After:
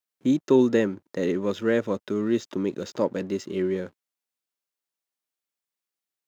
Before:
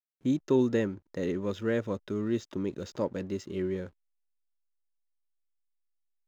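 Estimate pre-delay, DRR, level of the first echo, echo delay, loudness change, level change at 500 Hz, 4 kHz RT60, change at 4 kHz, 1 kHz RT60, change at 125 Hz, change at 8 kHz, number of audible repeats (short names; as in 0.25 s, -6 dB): none, none, none, none, +6.0 dB, +6.5 dB, none, +6.5 dB, none, +1.5 dB, n/a, none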